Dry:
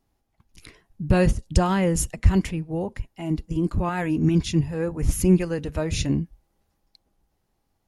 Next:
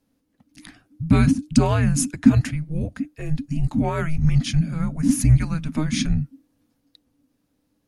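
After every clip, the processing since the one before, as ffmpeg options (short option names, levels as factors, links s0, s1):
-af "afreqshift=-310,volume=1.33"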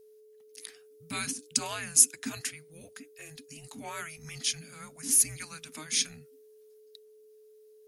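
-af "aderivative,aeval=exprs='val(0)+0.00112*sin(2*PI*430*n/s)':c=same,volume=1.78"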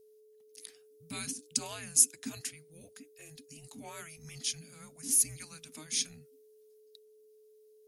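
-af "equalizer=f=1500:w=0.75:g=-7,volume=0.708"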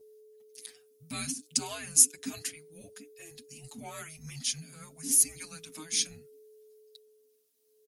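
-filter_complex "[0:a]asplit=2[s0][s1];[s1]adelay=6.7,afreqshift=0.32[s2];[s0][s2]amix=inputs=2:normalize=1,volume=2"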